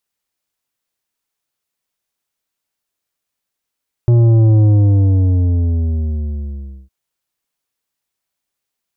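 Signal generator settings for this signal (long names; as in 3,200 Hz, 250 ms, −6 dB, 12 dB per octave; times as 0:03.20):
bass drop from 120 Hz, over 2.81 s, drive 9 dB, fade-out 2.27 s, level −8 dB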